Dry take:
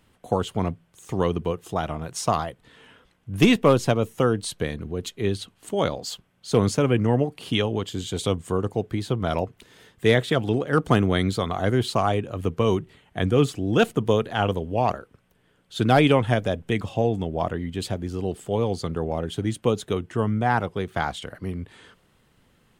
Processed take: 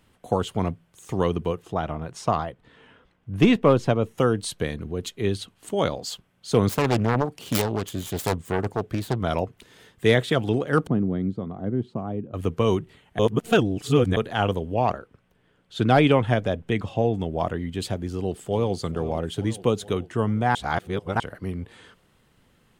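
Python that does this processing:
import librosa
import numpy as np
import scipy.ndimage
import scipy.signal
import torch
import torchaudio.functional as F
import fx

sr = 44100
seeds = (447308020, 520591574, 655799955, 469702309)

y = fx.lowpass(x, sr, hz=2300.0, slope=6, at=(1.62, 4.18))
y = fx.self_delay(y, sr, depth_ms=0.74, at=(6.69, 9.18))
y = fx.bandpass_q(y, sr, hz=210.0, q=1.3, at=(10.87, 12.34))
y = fx.high_shelf(y, sr, hz=6900.0, db=-10.5, at=(14.74, 17.2))
y = fx.echo_throw(y, sr, start_s=18.06, length_s=0.68, ms=440, feedback_pct=65, wet_db=-14.5)
y = fx.edit(y, sr, fx.reverse_span(start_s=13.19, length_s=0.98),
    fx.reverse_span(start_s=20.55, length_s=0.65), tone=tone)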